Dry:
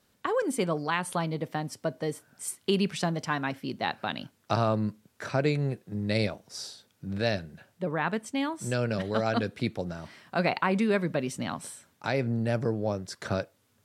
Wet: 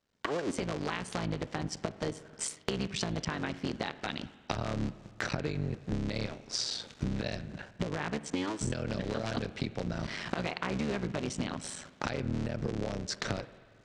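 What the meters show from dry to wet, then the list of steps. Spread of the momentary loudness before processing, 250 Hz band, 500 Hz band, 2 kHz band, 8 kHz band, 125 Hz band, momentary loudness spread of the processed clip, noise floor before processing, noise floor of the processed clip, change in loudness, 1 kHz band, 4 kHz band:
11 LU, −4.5 dB, −7.5 dB, −5.0 dB, 0.0 dB, −4.5 dB, 5 LU, −69 dBFS, −58 dBFS, −5.0 dB, −7.5 dB, −1.0 dB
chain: sub-harmonics by changed cycles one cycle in 3, muted
camcorder AGC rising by 37 dB per second
low-pass filter 7,100 Hz 24 dB per octave
noise gate −49 dBFS, range −12 dB
dynamic equaliser 930 Hz, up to −5 dB, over −42 dBFS, Q 0.75
downward compressor, threshold −29 dBFS, peak gain reduction 8 dB
spring reverb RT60 1.8 s, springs 45/55 ms, chirp 75 ms, DRR 15 dB

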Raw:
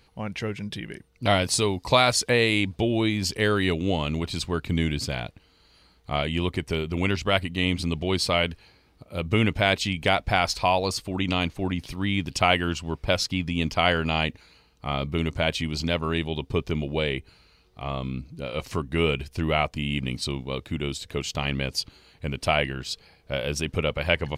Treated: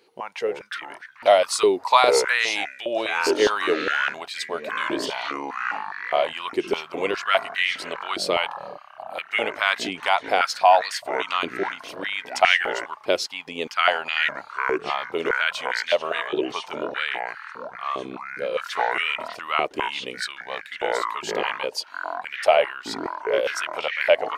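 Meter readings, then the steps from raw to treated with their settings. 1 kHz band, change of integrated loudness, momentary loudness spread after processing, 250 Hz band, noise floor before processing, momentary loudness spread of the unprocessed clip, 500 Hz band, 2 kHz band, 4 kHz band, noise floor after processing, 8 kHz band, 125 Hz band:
+6.0 dB, +2.0 dB, 13 LU, −7.0 dB, −60 dBFS, 11 LU, +4.0 dB, +4.5 dB, 0.0 dB, −46 dBFS, −1.0 dB, −23.5 dB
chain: delay with pitch and tempo change per echo 176 ms, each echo −7 semitones, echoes 3, each echo −6 dB
high-pass on a step sequencer 4.9 Hz 380–1,800 Hz
level −1.5 dB

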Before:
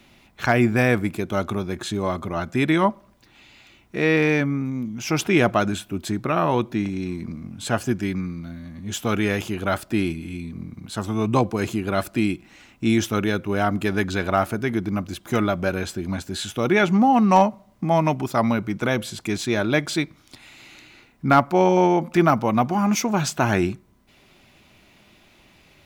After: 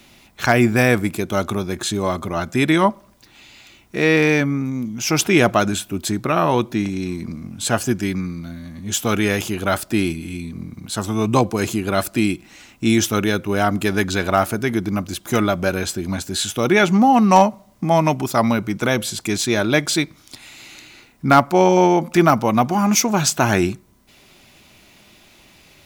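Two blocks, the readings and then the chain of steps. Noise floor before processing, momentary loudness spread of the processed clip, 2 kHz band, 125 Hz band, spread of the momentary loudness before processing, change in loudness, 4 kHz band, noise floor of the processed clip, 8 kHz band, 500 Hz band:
−56 dBFS, 12 LU, +4.0 dB, +2.5 dB, 11 LU, +3.5 dB, +6.5 dB, −51 dBFS, +9.5 dB, +3.5 dB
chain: bass and treble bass −1 dB, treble +7 dB
level +3.5 dB

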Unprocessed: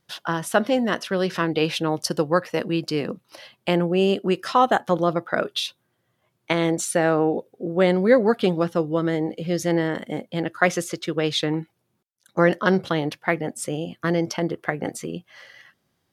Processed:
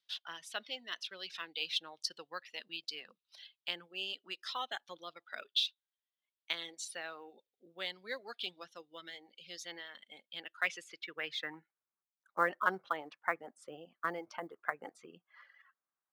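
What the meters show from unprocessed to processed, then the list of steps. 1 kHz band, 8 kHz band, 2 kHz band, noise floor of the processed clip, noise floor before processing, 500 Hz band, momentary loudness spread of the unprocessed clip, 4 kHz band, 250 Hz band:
−15.5 dB, −17.0 dB, −12.0 dB, below −85 dBFS, −73 dBFS, −25.0 dB, 10 LU, −7.5 dB, −30.5 dB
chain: band-pass filter sweep 3,600 Hz → 1,200 Hz, 0:10.22–0:12.05
high-pass filter 94 Hz 12 dB per octave
floating-point word with a short mantissa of 4 bits
reverb reduction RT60 1.6 s
level −3.5 dB

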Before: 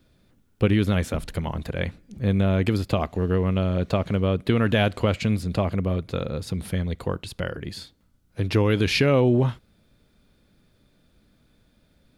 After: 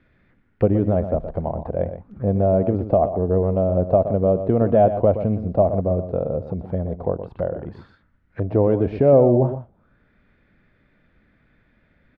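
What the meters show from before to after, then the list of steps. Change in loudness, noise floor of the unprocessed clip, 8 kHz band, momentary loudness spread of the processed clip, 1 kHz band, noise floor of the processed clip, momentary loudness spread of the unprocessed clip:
+3.5 dB, −63 dBFS, below −35 dB, 11 LU, +6.0 dB, −62 dBFS, 11 LU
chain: single-tap delay 121 ms −10.5 dB
envelope-controlled low-pass 660–2,000 Hz down, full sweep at −26 dBFS

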